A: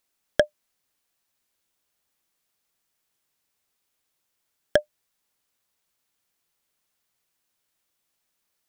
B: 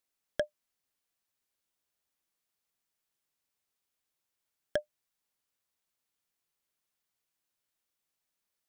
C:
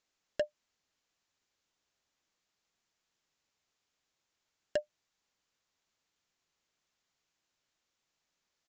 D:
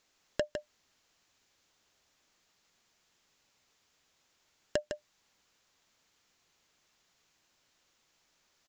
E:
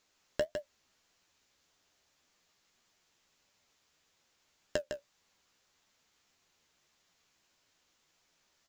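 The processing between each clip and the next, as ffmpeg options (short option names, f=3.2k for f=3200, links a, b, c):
-af "alimiter=limit=-8.5dB:level=0:latency=1:release=19,volume=-8.5dB"
-af "acompressor=threshold=-32dB:ratio=2,aresample=16000,volume=30dB,asoftclip=hard,volume=-30dB,aresample=44100,volume=5.5dB"
-af "acompressor=threshold=-41dB:ratio=4,aecho=1:1:156:0.447,volume=10dB"
-af "flanger=delay=9.7:depth=6.5:regen=41:speed=1.7:shape=triangular,acrusher=bits=8:mode=log:mix=0:aa=0.000001,volume=3dB"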